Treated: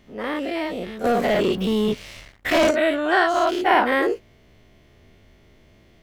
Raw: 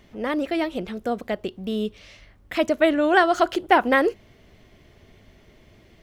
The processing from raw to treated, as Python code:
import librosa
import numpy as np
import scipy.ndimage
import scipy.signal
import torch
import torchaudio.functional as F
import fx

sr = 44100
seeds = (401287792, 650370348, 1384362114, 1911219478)

y = fx.spec_dilate(x, sr, span_ms=120)
y = fx.leveller(y, sr, passes=3, at=(1.04, 2.71))
y = y * librosa.db_to_amplitude(-6.0)